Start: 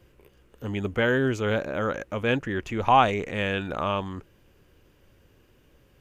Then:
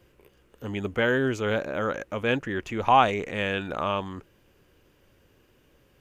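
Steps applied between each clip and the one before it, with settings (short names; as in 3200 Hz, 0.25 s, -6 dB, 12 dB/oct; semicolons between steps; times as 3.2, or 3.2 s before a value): low shelf 140 Hz -5.5 dB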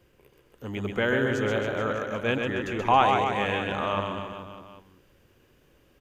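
reverse bouncing-ball echo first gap 0.13 s, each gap 1.1×, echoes 5; gain -2 dB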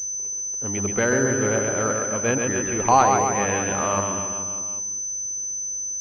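treble ducked by the level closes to 2000 Hz, closed at -20.5 dBFS; pulse-width modulation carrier 6100 Hz; gain +4 dB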